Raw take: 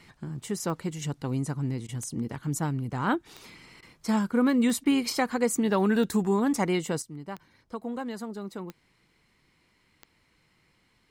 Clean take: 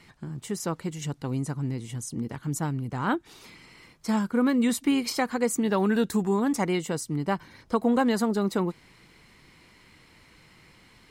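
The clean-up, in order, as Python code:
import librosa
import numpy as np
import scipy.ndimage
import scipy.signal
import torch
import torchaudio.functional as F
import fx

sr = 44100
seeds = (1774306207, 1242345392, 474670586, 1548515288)

y = fx.fix_declick_ar(x, sr, threshold=10.0)
y = fx.fix_interpolate(y, sr, at_s=(1.87, 3.81, 4.84), length_ms=14.0)
y = fx.gain(y, sr, db=fx.steps((0.0, 0.0), (7.02, 11.5)))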